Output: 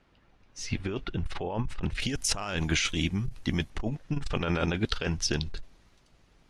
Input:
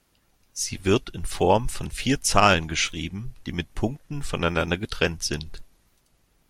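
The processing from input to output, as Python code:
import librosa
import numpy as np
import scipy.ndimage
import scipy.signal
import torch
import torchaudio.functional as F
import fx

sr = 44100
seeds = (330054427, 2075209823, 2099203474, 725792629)

y = fx.lowpass(x, sr, hz=fx.steps((0.0, 2800.0), (2.0, 9400.0), (3.7, 5400.0)), slope=12)
y = fx.over_compress(y, sr, threshold_db=-27.0, ratio=-1.0)
y = fx.transformer_sat(y, sr, knee_hz=160.0)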